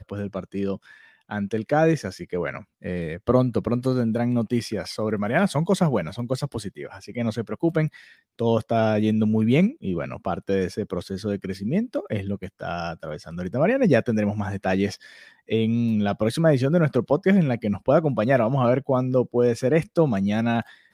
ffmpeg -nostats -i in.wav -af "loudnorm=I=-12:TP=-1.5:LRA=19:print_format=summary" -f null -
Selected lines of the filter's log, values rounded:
Input Integrated:    -23.4 LUFS
Input True Peak:      -4.5 dBTP
Input LRA:             4.7 LU
Input Threshold:     -33.7 LUFS